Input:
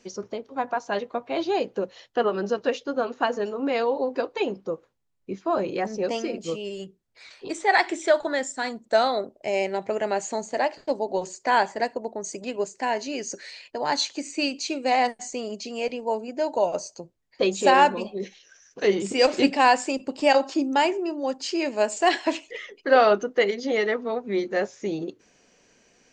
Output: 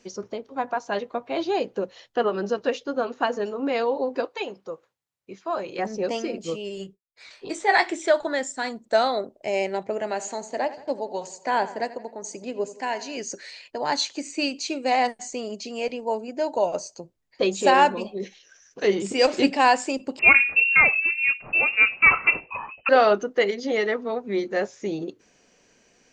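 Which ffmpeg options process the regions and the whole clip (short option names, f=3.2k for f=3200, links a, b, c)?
-filter_complex "[0:a]asettb=1/sr,asplit=3[a][b][c];[a]atrim=end=4.254[d];[b]atrim=start=4.25:end=5.79,asetpts=PTS-STARTPTS,afade=t=in:d=0.004:c=qsin,afade=t=out:st=1.536:d=0.004:c=qsin,highpass=120,equalizer=f=240:w=0.66:g=-10.5[e];[c]atrim=start=5.786[f];[d][e]acrossfade=d=0.004:c1=hsin:c2=qsin[g];[g][f]acrossfade=d=0.004:c1=qsin:c2=hsin,asettb=1/sr,asplit=3[h][i][j];[h]atrim=end=6.754[k];[i]atrim=start=6.75:end=7.91,asetpts=PTS-STARTPTS,afade=t=in:d=0.004:c=qsin,afade=t=out:st=1.156:d=0.004:c=qsin,agate=range=-33dB:threshold=-52dB:ratio=3:release=100:detection=peak,asplit=2[l][m];[m]adelay=20,volume=-8.5dB[n];[l][n]amix=inputs=2:normalize=0,atrim=end_sample=51156[o];[j]atrim=start=7.906[p];[k][o]acrossfade=d=0.004:c1=hsin:c2=qsin[q];[q][p]acrossfade=d=0.004:c1=qsin:c2=hsin,asettb=1/sr,asplit=3[r][s][t];[r]atrim=end=9.834[u];[s]atrim=start=9.83:end=13.17,asetpts=PTS-STARTPTS,afade=t=in:d=0.004:c=qsin,afade=t=out:st=3.336:d=0.004:c=qsin,highpass=80,acrossover=split=800[v][w];[v]aeval=exprs='val(0)*(1-0.5/2+0.5/2*cos(2*PI*1.1*n/s))':c=same[x];[w]aeval=exprs='val(0)*(1-0.5/2-0.5/2*cos(2*PI*1.1*n/s))':c=same[y];[x][y]amix=inputs=2:normalize=0,asplit=2[z][aa];[aa]adelay=85,lowpass=f=4.8k:p=1,volume=-15.5dB,asplit=2[ab][ac];[ac]adelay=85,lowpass=f=4.8k:p=1,volume=0.51,asplit=2[ad][ae];[ae]adelay=85,lowpass=f=4.8k:p=1,volume=0.51,asplit=2[af][ag];[ag]adelay=85,lowpass=f=4.8k:p=1,volume=0.51,asplit=2[ah][ai];[ai]adelay=85,lowpass=f=4.8k:p=1,volume=0.51[aj];[z][ab][ad][af][ah][aj]amix=inputs=6:normalize=0,atrim=end_sample=147294[ak];[t]atrim=start=13.166[al];[u][ak]acrossfade=d=0.004:c1=hsin:c2=qsin[am];[am][al]acrossfade=d=0.004:c1=qsin:c2=hsin,asettb=1/sr,asplit=3[an][ao][ap];[an]atrim=end=20.194[aq];[ao]atrim=start=20.19:end=22.89,asetpts=PTS-STARTPTS,afade=t=in:d=0.004:c=qsin,afade=t=out:st=2.696:d=0.004:c=qsin,bandreject=f=60:t=h:w=6,bandreject=f=120:t=h:w=6,bandreject=f=180:t=h:w=6,bandreject=f=240:t=h:w=6,bandreject=f=300:t=h:w=6,bandreject=f=360:t=h:w=6,bandreject=f=420:t=h:w=6,bandreject=f=480:t=h:w=6,bandreject=f=540:t=h:w=6,acontrast=22,lowpass=f=2.6k:t=q:w=0.5098,lowpass=f=2.6k:t=q:w=0.6013,lowpass=f=2.6k:t=q:w=0.9,lowpass=f=2.6k:t=q:w=2.563,afreqshift=-3000[ar];[ap]atrim=start=22.886[as];[aq][ar]acrossfade=d=0.004:c1=hsin:c2=qsin[at];[at][as]acrossfade=d=0.004:c1=qsin:c2=hsin"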